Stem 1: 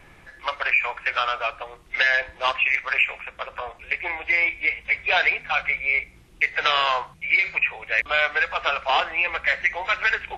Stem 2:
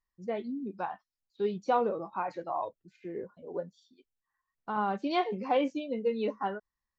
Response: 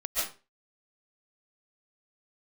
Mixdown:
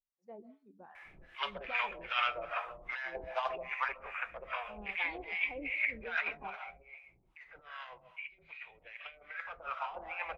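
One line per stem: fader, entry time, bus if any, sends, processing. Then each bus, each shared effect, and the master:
6.28 s -5.5 dB -> 6.65 s -17.5 dB -> 9.23 s -17.5 dB -> 9.88 s -10 dB, 0.95 s, send -13 dB, compressor with a negative ratio -24 dBFS, ratio -0.5; flange 0.33 Hz, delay 5.1 ms, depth 1.9 ms, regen -72%
-14.5 dB, 0.00 s, send -20.5 dB, none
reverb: on, RT60 0.35 s, pre-delay 100 ms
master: harmonic tremolo 2.5 Hz, depth 100%, crossover 650 Hz; treble shelf 3.8 kHz -10 dB; sweeping bell 0.29 Hz 760–3500 Hz +11 dB

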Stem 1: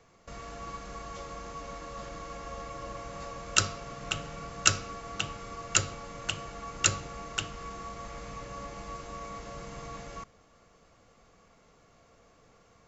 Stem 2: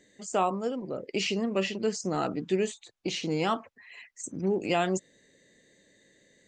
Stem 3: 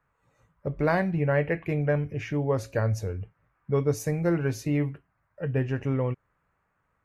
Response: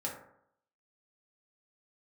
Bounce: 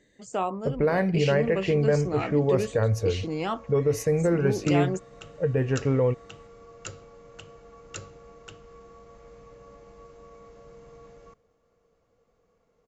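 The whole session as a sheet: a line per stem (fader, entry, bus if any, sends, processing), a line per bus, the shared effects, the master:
-13.0 dB, 1.10 s, bus A, no send, tilt shelf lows +3.5 dB, about 1.3 kHz
-1.5 dB, 0.00 s, no bus, no send, treble shelf 5.1 kHz -8 dB
+2.5 dB, 0.00 s, bus A, no send, level-controlled noise filter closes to 390 Hz, open at -22.5 dBFS
bus A: 0.0 dB, peaking EQ 470 Hz +11 dB 0.26 oct; peak limiter -14.5 dBFS, peak gain reduction 9 dB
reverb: none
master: none

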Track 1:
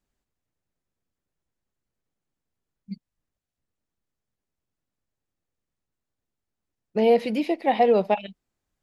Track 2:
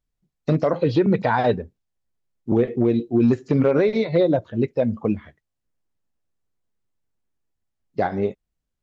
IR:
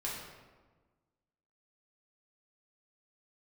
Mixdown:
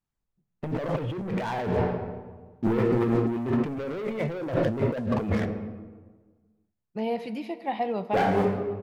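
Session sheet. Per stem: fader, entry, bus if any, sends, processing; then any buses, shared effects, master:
-16.5 dB, 0.00 s, send -12.5 dB, echo send -21.5 dB, graphic EQ 125/500/1000 Hz +11/-5/+6 dB
-5.5 dB, 0.15 s, send -10 dB, no echo send, steep low-pass 3.3 kHz 96 dB/octave; level-controlled noise filter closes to 1.4 kHz; waveshaping leveller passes 3; auto duck -19 dB, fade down 1.50 s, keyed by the first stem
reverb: on, RT60 1.4 s, pre-delay 3 ms
echo: delay 458 ms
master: compressor with a negative ratio -27 dBFS, ratio -1

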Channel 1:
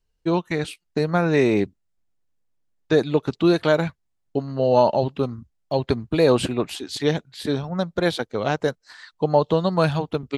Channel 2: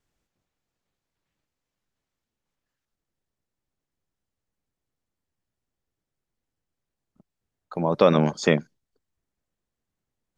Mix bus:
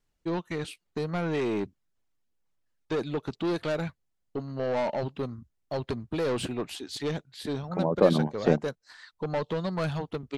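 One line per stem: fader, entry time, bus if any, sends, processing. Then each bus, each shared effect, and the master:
-6.0 dB, 0.00 s, no send, saturation -18 dBFS, distortion -10 dB
-2.0 dB, 0.00 s, no send, reverb removal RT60 1 s; low-pass that closes with the level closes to 840 Hz, closed at -21.5 dBFS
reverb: none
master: none

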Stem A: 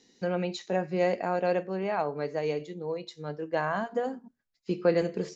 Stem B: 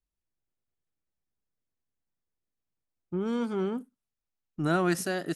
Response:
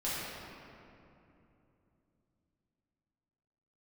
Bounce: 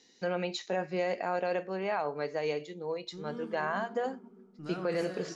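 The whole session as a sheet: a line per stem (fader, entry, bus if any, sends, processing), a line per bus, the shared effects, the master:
+2.0 dB, 0.00 s, no send, bass shelf 410 Hz -9.5 dB
-17.5 dB, 0.00 s, send -7.5 dB, none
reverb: on, RT60 2.9 s, pre-delay 5 ms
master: low-pass 8 kHz 12 dB/octave; peak limiter -21.5 dBFS, peak gain reduction 8.5 dB

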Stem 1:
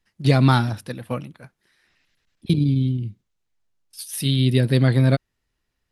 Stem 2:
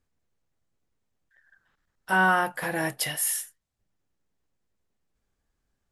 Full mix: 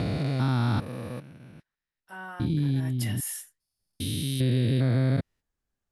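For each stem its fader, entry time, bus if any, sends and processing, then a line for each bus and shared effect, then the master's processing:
-1.5 dB, 0.00 s, no send, spectrogram pixelated in time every 400 ms; gate -46 dBFS, range -26 dB
2.72 s -19.5 dB -> 3.04 s -7 dB, 0.00 s, no send, none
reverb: none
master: compression 1.5:1, threshold -26 dBFS, peak gain reduction 4 dB

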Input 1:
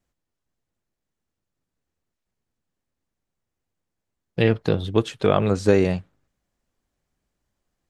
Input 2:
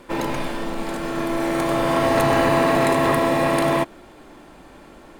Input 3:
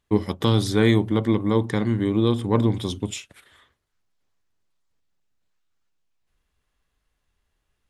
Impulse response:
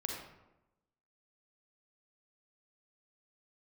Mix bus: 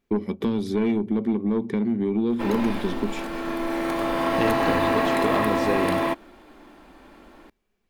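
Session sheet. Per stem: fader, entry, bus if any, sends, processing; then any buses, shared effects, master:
+0.5 dB, 0.00 s, bus A, no send, none
-3.0 dB, 2.30 s, no bus, no send, none
-5.5 dB, 0.00 s, bus A, no send, small resonant body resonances 210/390/2300 Hz, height 16 dB, ringing for 35 ms
bus A: 0.0 dB, saturation -7.5 dBFS, distortion -16 dB; compression 3:1, threshold -21 dBFS, peak gain reduction 8 dB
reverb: none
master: graphic EQ 125/250/500/8000 Hz -11/+3/-3/-7 dB

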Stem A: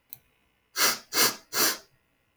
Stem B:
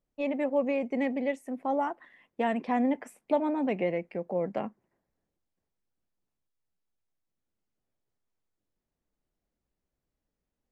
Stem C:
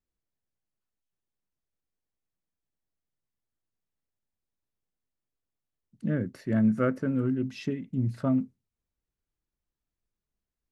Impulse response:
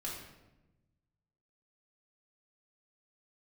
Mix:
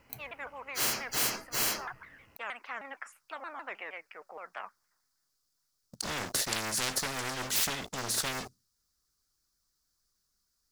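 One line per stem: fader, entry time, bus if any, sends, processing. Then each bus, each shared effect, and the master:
-2.0 dB, 0.00 s, no send, treble shelf 3.7 kHz -11.5 dB; band-stop 3.6 kHz, Q 5.2
-14.5 dB, 0.00 s, no send, resonant high-pass 1.3 kHz, resonance Q 5.2; vibrato with a chosen wave saw down 6.4 Hz, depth 250 cents
+2.0 dB, 0.00 s, no send, resonant high shelf 3.4 kHz +13 dB, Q 3; waveshaping leveller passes 3; upward expansion 1.5:1, over -30 dBFS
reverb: none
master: spectrum-flattening compressor 10:1

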